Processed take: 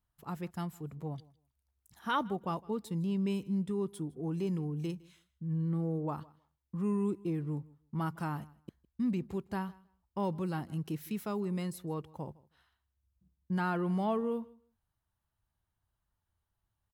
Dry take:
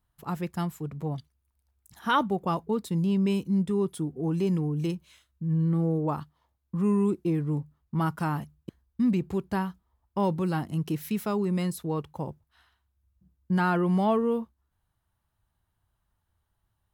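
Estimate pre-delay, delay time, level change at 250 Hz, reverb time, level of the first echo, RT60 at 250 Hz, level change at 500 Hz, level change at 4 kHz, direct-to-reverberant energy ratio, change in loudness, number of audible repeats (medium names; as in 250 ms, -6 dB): no reverb, 159 ms, -7.5 dB, no reverb, -23.0 dB, no reverb, -7.5 dB, -7.5 dB, no reverb, -7.5 dB, 1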